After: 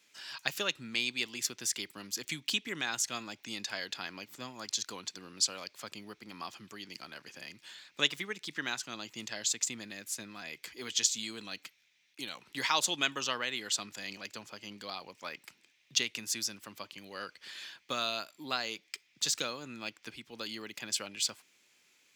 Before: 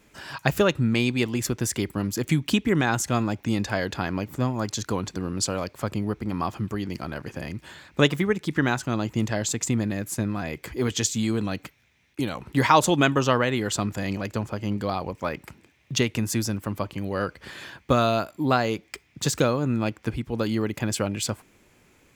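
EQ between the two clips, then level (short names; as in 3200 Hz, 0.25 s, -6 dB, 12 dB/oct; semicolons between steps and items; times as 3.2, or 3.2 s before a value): three-band isolator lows -17 dB, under 160 Hz, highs -22 dB, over 5100 Hz; pre-emphasis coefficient 0.9; high shelf 2700 Hz +11 dB; 0.0 dB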